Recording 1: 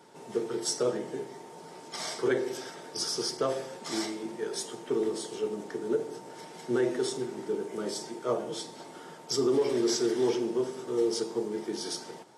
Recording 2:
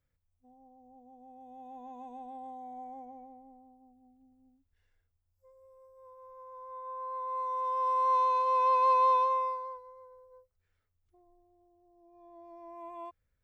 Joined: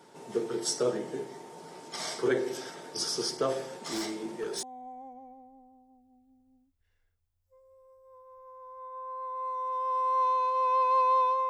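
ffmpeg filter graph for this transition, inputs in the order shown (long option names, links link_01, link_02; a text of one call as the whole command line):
ffmpeg -i cue0.wav -i cue1.wav -filter_complex "[0:a]asettb=1/sr,asplit=3[link_01][link_02][link_03];[link_01]atrim=end=3.584[link_04];[link_02]atrim=start=3.58:end=4.63,asetpts=PTS-STARTPTS,afade=type=in:duration=0.004:curve=qsin,afade=type=out:start_time=1.046:duration=0.004:curve=qsin,asoftclip=type=hard:threshold=-29dB[link_05];[link_03]atrim=start=4.626[link_06];[link_04][link_05]acrossfade=duration=0.004:curve1=hsin:curve2=qsin[link_07];[link_07][link_06]acrossfade=duration=0.004:curve1=qsin:curve2=hsin,apad=whole_dur=11.49,atrim=end=11.49,atrim=end=4.632[link_08];[1:a]atrim=start=2.548:end=9.41[link_09];[link_08][link_09]acrossfade=duration=0.004:curve1=hsin:curve2=hsin" out.wav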